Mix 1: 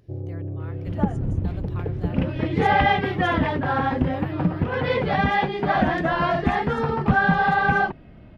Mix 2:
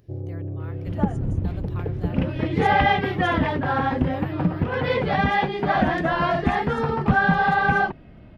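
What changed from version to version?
master: add high-shelf EQ 11,000 Hz +6.5 dB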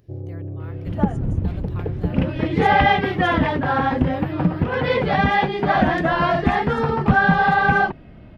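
second sound +3.0 dB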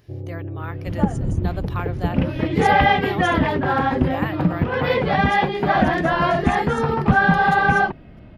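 speech +12.0 dB

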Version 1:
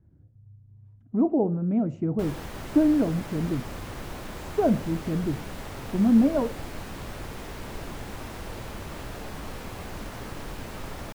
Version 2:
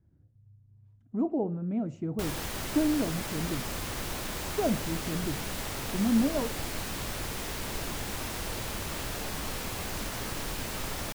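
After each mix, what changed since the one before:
speech −6.5 dB
master: add high-shelf EQ 2,600 Hz +11 dB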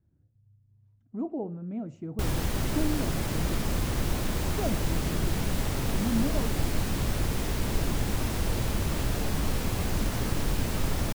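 speech −4.0 dB
background: add low-shelf EQ 390 Hz +11.5 dB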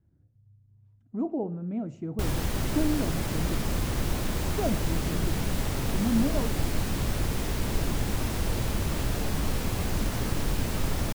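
reverb: on, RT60 0.70 s

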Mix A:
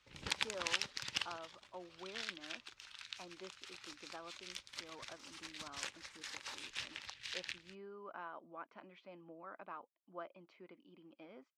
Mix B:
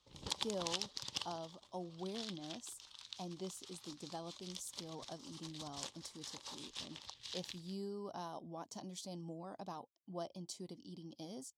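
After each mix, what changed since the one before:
speech: remove loudspeaker in its box 430–2,300 Hz, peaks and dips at 430 Hz −3 dB, 760 Hz −8 dB, 1,200 Hz +4 dB, 1,800 Hz −8 dB
master: add flat-topped bell 1,900 Hz −12.5 dB 1.2 octaves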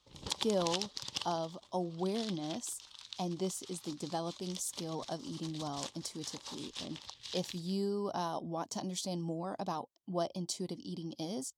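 speech +9.5 dB
background +3.0 dB

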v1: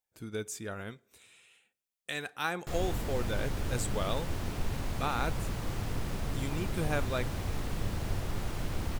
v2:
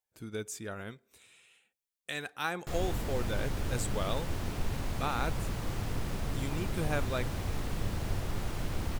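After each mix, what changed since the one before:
speech: send −8.0 dB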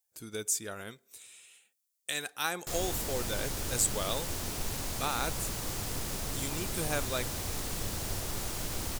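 master: add bass and treble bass −5 dB, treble +13 dB

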